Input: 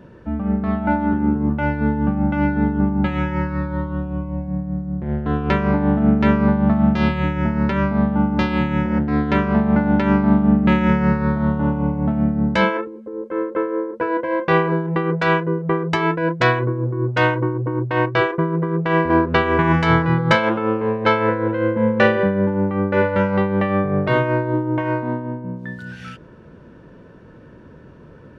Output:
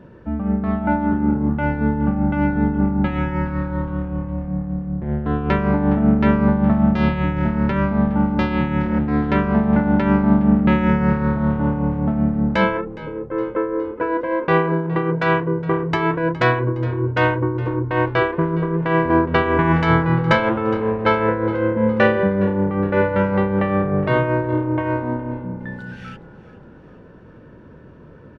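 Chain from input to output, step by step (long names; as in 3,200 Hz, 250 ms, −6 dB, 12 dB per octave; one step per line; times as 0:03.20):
high-shelf EQ 4,400 Hz −9 dB
echo with shifted repeats 414 ms, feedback 54%, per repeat −35 Hz, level −18 dB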